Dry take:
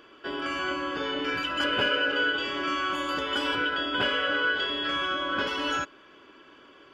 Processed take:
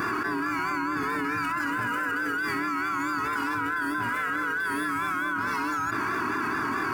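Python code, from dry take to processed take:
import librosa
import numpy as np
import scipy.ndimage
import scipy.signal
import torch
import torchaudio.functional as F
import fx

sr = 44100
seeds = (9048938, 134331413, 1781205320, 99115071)

p1 = scipy.signal.medfilt(x, 5)
p2 = fx.peak_eq(p1, sr, hz=110.0, db=8.0, octaves=0.23)
p3 = p2 + fx.room_early_taps(p2, sr, ms=(20, 45, 61), db=(-10.0, -9.5, -3.5), dry=0)
p4 = fx.vibrato(p3, sr, rate_hz=4.6, depth_cents=66.0)
p5 = scipy.signal.sosfilt(scipy.signal.butter(2, 87.0, 'highpass', fs=sr, output='sos'), p4)
p6 = fx.fixed_phaser(p5, sr, hz=1300.0, stages=4)
p7 = fx.env_flatten(p6, sr, amount_pct=100)
y = p7 * 10.0 ** (-2.5 / 20.0)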